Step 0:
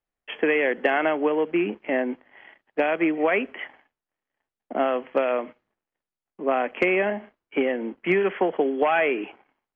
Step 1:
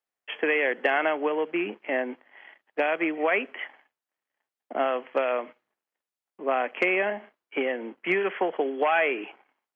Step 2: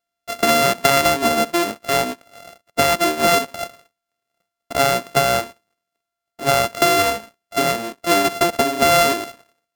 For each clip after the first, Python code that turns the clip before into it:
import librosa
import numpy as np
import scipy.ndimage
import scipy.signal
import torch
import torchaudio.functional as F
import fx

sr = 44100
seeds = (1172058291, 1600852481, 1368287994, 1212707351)

y1 = fx.highpass(x, sr, hz=540.0, slope=6)
y2 = np.r_[np.sort(y1[:len(y1) // 64 * 64].reshape(-1, 64), axis=1).ravel(), y1[len(y1) // 64 * 64:]]
y2 = y2 * librosa.db_to_amplitude(8.5)